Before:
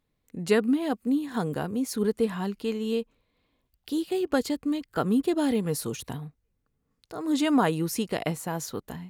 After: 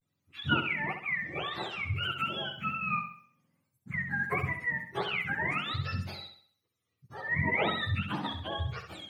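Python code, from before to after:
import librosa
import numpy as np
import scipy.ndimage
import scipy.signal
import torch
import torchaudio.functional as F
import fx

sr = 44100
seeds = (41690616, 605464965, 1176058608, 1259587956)

y = fx.octave_mirror(x, sr, pivot_hz=760.0)
y = fx.vibrato(y, sr, rate_hz=0.55, depth_cents=87.0)
y = fx.room_flutter(y, sr, wall_m=11.3, rt60_s=0.52)
y = y * librosa.db_to_amplitude(-3.0)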